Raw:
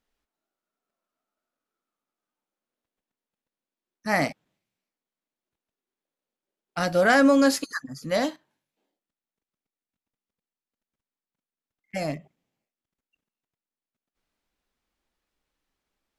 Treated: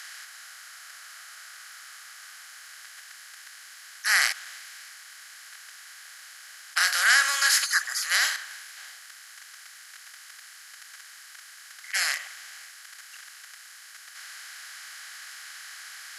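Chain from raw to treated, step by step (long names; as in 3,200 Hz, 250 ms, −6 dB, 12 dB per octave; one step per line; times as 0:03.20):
compressor on every frequency bin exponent 0.4
high-pass filter 1,400 Hz 24 dB per octave
high-shelf EQ 3,500 Hz +7 dB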